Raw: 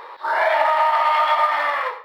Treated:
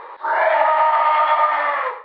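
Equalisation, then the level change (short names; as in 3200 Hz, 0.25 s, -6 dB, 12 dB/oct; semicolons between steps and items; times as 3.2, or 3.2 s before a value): air absorption 360 m; +3.5 dB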